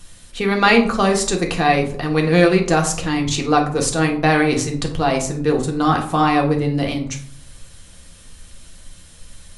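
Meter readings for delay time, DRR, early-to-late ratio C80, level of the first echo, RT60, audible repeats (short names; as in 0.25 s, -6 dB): none, 1.5 dB, 13.5 dB, none, 0.60 s, none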